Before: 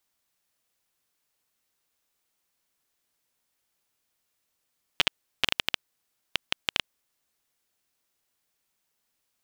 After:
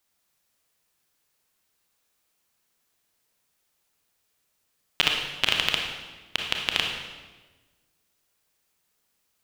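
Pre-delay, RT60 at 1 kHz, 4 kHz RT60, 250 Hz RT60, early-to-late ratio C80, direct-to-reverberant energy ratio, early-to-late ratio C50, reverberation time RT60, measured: 26 ms, 1.2 s, 1.1 s, 1.5 s, 5.0 dB, 1.0 dB, 2.5 dB, 1.3 s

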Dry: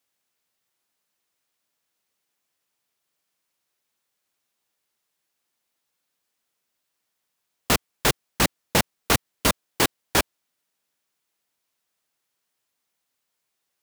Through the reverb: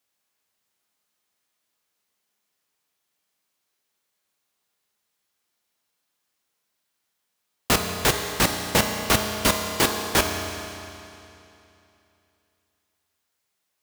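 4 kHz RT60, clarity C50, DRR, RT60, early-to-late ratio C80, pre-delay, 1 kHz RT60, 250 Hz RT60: 2.7 s, 5.0 dB, 3.5 dB, 2.9 s, 6.0 dB, 5 ms, 2.9 s, 2.9 s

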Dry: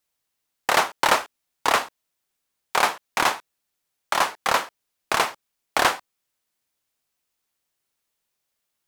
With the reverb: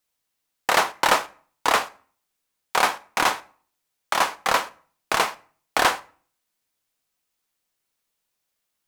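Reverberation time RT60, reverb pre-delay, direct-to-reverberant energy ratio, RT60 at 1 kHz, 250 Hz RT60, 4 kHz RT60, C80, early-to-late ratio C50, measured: 0.45 s, 4 ms, 11.5 dB, 0.45 s, 0.55 s, 0.35 s, 24.5 dB, 20.0 dB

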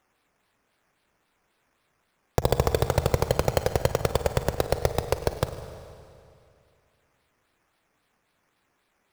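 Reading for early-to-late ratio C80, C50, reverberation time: 10.5 dB, 9.5 dB, 2.5 s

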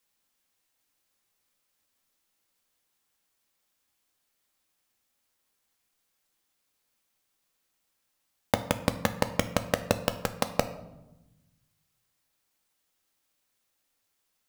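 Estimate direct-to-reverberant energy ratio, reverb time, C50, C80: 8.0 dB, 1.0 s, 13.0 dB, 15.0 dB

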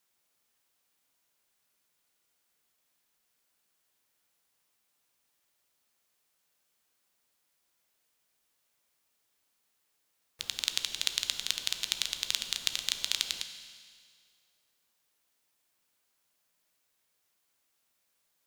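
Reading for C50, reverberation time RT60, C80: 9.0 dB, 2.0 s, 10.0 dB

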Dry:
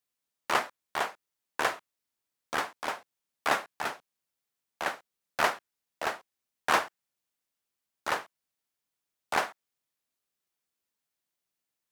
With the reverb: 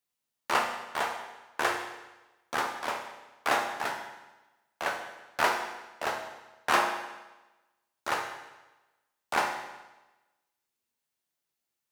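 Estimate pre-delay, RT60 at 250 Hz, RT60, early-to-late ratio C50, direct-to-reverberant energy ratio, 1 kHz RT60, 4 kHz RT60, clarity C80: 8 ms, 1.1 s, 1.1 s, 5.5 dB, 1.5 dB, 1.1 s, 1.1 s, 8.0 dB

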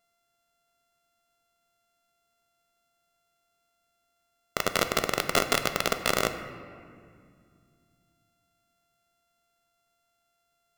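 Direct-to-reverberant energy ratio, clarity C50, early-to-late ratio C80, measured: 7.5 dB, 9.0 dB, 10.0 dB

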